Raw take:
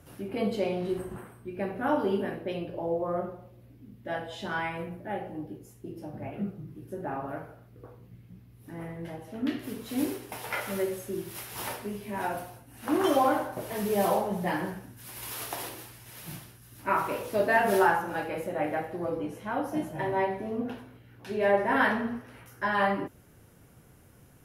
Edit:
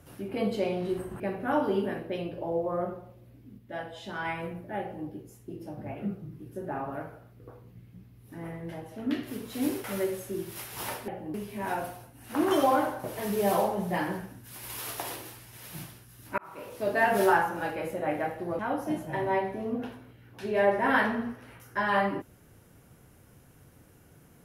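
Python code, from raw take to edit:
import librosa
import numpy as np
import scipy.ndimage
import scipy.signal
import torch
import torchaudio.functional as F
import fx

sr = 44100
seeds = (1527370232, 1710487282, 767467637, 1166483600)

y = fx.edit(x, sr, fx.cut(start_s=1.2, length_s=0.36),
    fx.clip_gain(start_s=3.94, length_s=0.67, db=-3.5),
    fx.duplicate(start_s=5.17, length_s=0.26, to_s=11.87),
    fx.cut(start_s=10.2, length_s=0.43),
    fx.fade_in_span(start_s=16.91, length_s=0.71),
    fx.cut(start_s=19.12, length_s=0.33), tone=tone)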